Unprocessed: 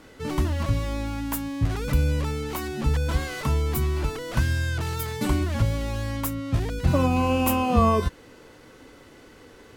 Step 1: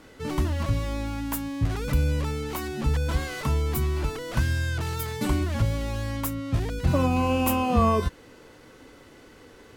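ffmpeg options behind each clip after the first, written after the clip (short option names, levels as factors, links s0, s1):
-af "acontrast=39,volume=0.473"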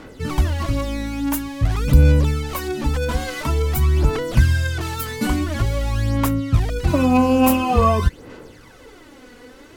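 -af "aphaser=in_gain=1:out_gain=1:delay=4.1:decay=0.58:speed=0.48:type=sinusoidal,volume=1.58"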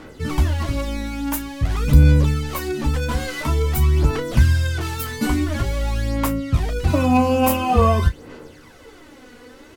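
-af "aecho=1:1:13|33:0.376|0.251,volume=0.891"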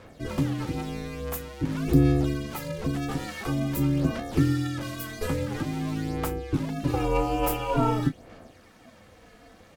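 -af "aeval=exprs='val(0)*sin(2*PI*210*n/s)':c=same,volume=0.531"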